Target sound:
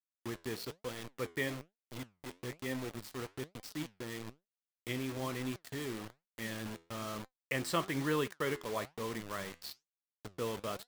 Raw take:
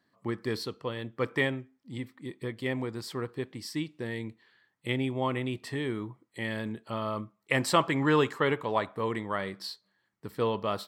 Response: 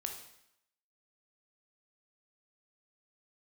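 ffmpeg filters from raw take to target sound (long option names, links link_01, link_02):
-af "equalizer=frequency=850:width=2.5:gain=-6,acrusher=bits=5:mix=0:aa=0.000001,flanger=delay=3.8:depth=8.3:regen=80:speed=1.1:shape=sinusoidal,volume=-3.5dB"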